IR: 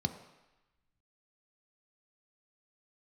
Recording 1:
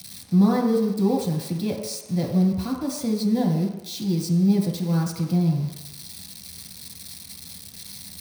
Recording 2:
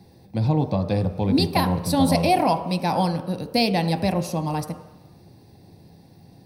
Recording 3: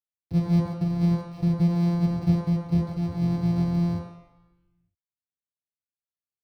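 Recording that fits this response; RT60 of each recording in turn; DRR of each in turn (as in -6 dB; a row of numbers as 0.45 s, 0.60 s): 2; 1.0 s, 1.0 s, 1.0 s; -1.5 dB, 7.0 dB, -8.0 dB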